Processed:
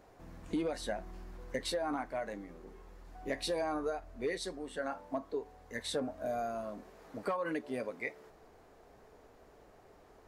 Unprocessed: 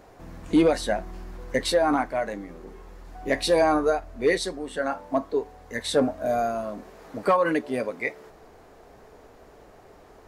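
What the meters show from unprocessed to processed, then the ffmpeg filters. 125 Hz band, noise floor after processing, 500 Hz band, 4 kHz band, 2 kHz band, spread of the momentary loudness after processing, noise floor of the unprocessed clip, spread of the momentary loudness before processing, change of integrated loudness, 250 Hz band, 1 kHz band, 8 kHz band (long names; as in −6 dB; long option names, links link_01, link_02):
−12.0 dB, −61 dBFS, −13.0 dB, −10.5 dB, −12.0 dB, 15 LU, −52 dBFS, 17 LU, −13.0 dB, −13.0 dB, −13.0 dB, −10.5 dB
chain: -af "acompressor=threshold=-23dB:ratio=4,volume=-9dB"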